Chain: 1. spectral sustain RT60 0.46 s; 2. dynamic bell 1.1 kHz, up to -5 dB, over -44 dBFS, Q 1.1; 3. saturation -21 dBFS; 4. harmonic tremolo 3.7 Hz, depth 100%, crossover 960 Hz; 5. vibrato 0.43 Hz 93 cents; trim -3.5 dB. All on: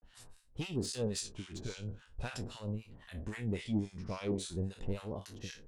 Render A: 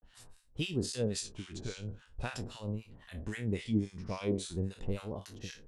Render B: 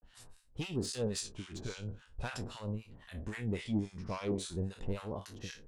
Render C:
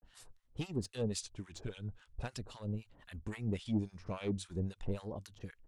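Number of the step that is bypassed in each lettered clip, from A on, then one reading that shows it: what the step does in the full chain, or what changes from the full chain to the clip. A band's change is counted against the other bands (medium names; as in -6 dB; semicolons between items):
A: 3, distortion -14 dB; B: 2, 1 kHz band +3.0 dB; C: 1, 8 kHz band -2.5 dB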